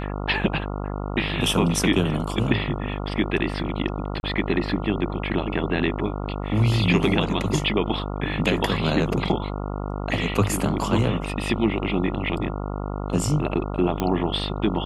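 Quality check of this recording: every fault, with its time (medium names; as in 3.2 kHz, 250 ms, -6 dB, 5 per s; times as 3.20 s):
buzz 50 Hz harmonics 28 -29 dBFS
4.20–4.23 s: dropout 31 ms
14.00 s: pop -10 dBFS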